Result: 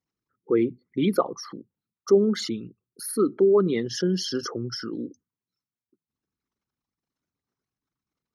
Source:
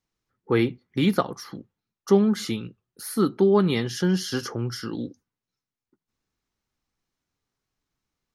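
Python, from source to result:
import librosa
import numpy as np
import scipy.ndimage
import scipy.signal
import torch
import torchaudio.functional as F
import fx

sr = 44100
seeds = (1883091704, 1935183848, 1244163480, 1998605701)

y = fx.envelope_sharpen(x, sr, power=2.0)
y = fx.highpass(y, sr, hz=280.0, slope=6)
y = y * librosa.db_to_amplitude(2.0)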